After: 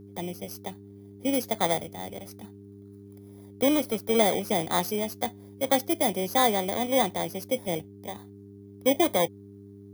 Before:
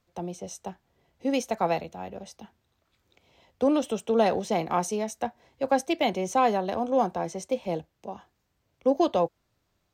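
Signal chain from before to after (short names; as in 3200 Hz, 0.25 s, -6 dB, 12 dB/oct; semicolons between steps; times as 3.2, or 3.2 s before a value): FFT order left unsorted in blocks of 16 samples; buzz 100 Hz, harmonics 4, -47 dBFS -1 dB/oct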